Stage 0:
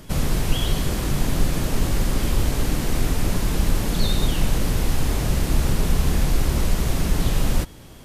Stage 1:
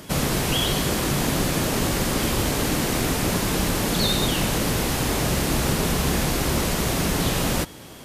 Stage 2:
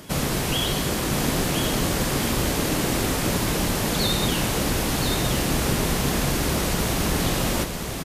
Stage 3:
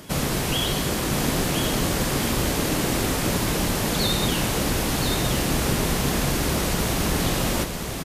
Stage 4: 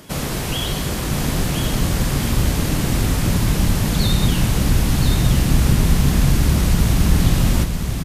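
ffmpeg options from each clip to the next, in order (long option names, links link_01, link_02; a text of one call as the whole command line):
ffmpeg -i in.wav -af "highpass=frequency=220:poles=1,volume=5.5dB" out.wav
ffmpeg -i in.wav -af "aecho=1:1:1021:0.531,volume=-1.5dB" out.wav
ffmpeg -i in.wav -af anull out.wav
ffmpeg -i in.wav -af "asubboost=boost=4.5:cutoff=200" out.wav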